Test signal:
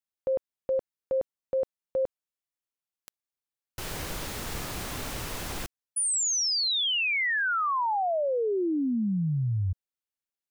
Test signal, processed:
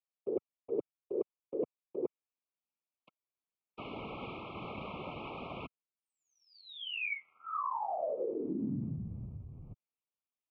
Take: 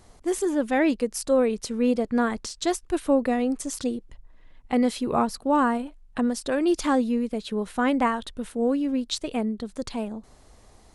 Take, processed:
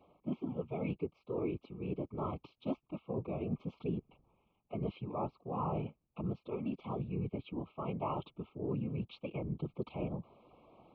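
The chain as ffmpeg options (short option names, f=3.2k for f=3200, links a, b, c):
-af "areverse,acompressor=threshold=-32dB:ratio=20:attack=87:release=538:knee=1:detection=rms,areverse,afftfilt=real='hypot(re,im)*cos(2*PI*random(0))':imag='hypot(re,im)*sin(2*PI*random(1))':win_size=512:overlap=0.75,highpass=f=230:t=q:w=0.5412,highpass=f=230:t=q:w=1.307,lowpass=f=2.9k:t=q:w=0.5176,lowpass=f=2.9k:t=q:w=0.7071,lowpass=f=2.9k:t=q:w=1.932,afreqshift=-110,asuperstop=centerf=1700:order=20:qfactor=2,volume=4dB"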